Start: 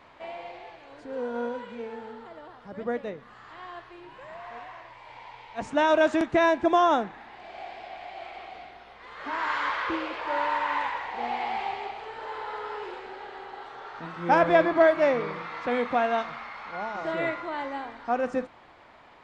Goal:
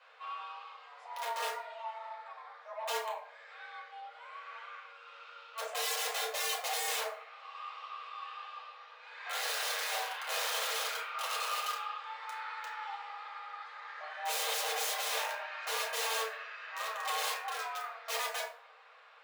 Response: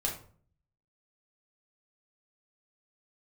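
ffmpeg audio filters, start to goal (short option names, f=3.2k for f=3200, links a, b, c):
-filter_complex "[0:a]aeval=exprs='(mod(16.8*val(0)+1,2)-1)/16.8':c=same,afreqshift=440[a];[1:a]atrim=start_sample=2205[b];[a][b]afir=irnorm=-1:irlink=0,volume=-9dB"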